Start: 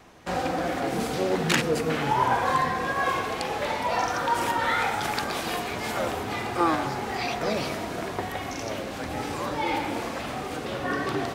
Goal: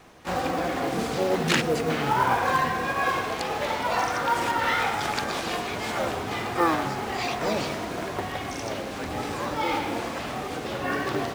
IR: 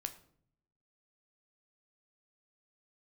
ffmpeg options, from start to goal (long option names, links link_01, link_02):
-filter_complex "[0:a]acrossover=split=9300[link_01][link_02];[link_02]acompressor=threshold=-58dB:ratio=4:attack=1:release=60[link_03];[link_01][link_03]amix=inputs=2:normalize=0,acrusher=bits=6:mode=log:mix=0:aa=0.000001,asplit=2[link_04][link_05];[link_05]asetrate=66075,aresample=44100,atempo=0.66742,volume=-9dB[link_06];[link_04][link_06]amix=inputs=2:normalize=0"